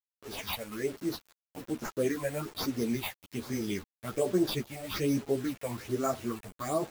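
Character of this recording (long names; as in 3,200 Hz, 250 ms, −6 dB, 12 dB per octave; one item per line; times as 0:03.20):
aliases and images of a low sample rate 8,300 Hz, jitter 0%
phaser sweep stages 6, 1.2 Hz, lowest notch 320–3,400 Hz
a quantiser's noise floor 8 bits, dither none
a shimmering, thickened sound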